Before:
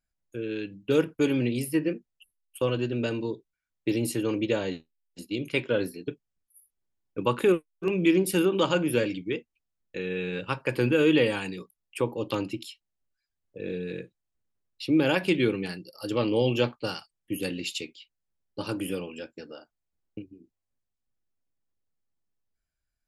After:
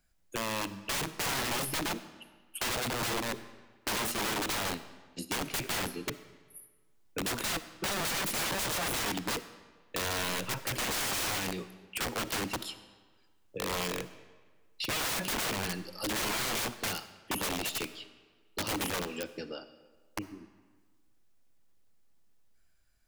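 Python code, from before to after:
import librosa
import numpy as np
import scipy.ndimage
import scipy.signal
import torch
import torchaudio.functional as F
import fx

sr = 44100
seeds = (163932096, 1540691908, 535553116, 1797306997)

y = (np.mod(10.0 ** (27.5 / 20.0) * x + 1.0, 2.0) - 1.0) / 10.0 ** (27.5 / 20.0)
y = fx.rev_freeverb(y, sr, rt60_s=1.1, hf_ratio=0.85, predelay_ms=15, drr_db=14.0)
y = fx.band_squash(y, sr, depth_pct=40)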